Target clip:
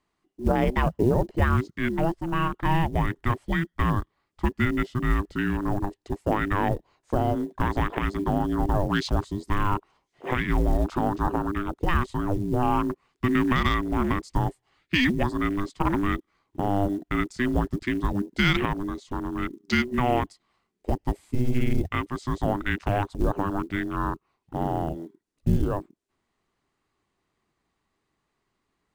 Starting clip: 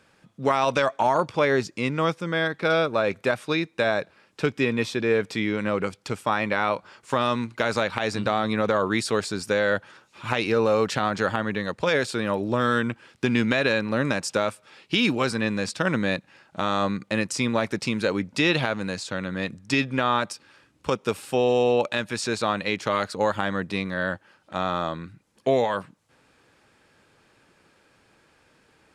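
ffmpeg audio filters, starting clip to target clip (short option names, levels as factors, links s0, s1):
-af "afreqshift=-500,afwtdn=0.0251,acrusher=bits=8:mode=log:mix=0:aa=0.000001"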